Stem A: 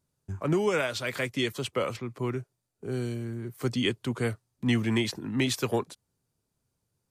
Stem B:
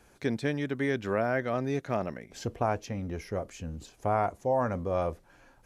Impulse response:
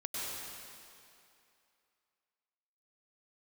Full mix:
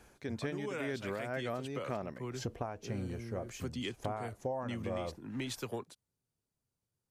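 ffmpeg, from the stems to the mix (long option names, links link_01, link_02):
-filter_complex "[0:a]volume=-9.5dB[link_01];[1:a]tremolo=f=2:d=0.69,volume=0.5dB[link_02];[link_01][link_02]amix=inputs=2:normalize=0,acompressor=threshold=-34dB:ratio=6"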